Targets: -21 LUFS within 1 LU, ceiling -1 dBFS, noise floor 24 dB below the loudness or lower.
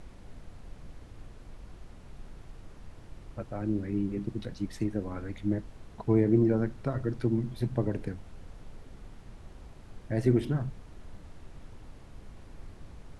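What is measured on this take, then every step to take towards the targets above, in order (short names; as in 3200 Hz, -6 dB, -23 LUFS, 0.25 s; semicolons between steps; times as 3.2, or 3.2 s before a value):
noise floor -50 dBFS; noise floor target -55 dBFS; loudness -30.5 LUFS; peak -12.0 dBFS; loudness target -21.0 LUFS
-> noise print and reduce 6 dB; gain +9.5 dB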